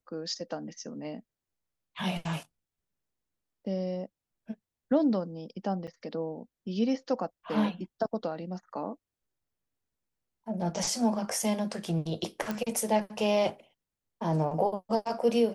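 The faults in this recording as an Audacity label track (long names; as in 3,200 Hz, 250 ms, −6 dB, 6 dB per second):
5.870000	5.880000	drop-out 6.6 ms
12.510000	12.510000	click −18 dBFS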